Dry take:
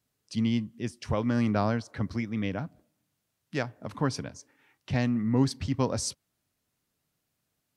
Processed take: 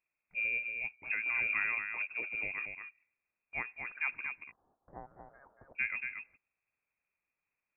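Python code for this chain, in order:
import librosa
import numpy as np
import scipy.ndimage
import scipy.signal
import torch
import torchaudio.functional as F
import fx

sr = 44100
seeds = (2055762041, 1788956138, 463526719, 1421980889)

y = fx.cheby2_highpass(x, sr, hz=250.0, order=4, stop_db=80, at=(4.27, 5.75), fade=0.02)
y = y + 10.0 ** (-6.0 / 20.0) * np.pad(y, (int(231 * sr / 1000.0), 0))[:len(y)]
y = fx.freq_invert(y, sr, carrier_hz=2600)
y = y * 10.0 ** (-8.0 / 20.0)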